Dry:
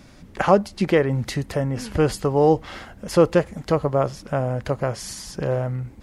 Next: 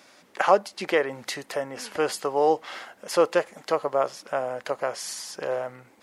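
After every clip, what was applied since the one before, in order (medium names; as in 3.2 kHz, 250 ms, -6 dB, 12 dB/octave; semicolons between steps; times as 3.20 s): high-pass 540 Hz 12 dB/octave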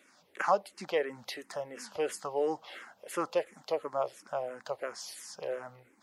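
barber-pole phaser -2.9 Hz; trim -6 dB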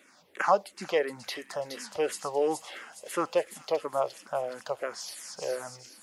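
feedback echo behind a high-pass 419 ms, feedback 49%, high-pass 4 kHz, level -4 dB; trim +3.5 dB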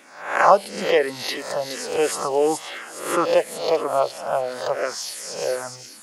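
reverse spectral sustain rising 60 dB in 0.58 s; trim +7 dB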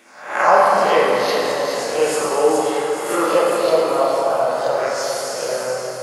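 plate-style reverb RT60 3.8 s, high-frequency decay 0.55×, DRR -5.5 dB; trim -2 dB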